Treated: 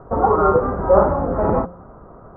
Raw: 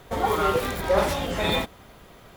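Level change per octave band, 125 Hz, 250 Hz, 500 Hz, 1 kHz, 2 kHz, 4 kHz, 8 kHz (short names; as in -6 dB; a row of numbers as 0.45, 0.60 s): +7.5 dB, +7.5 dB, +8.5 dB, +7.5 dB, -5.0 dB, under -40 dB, under -40 dB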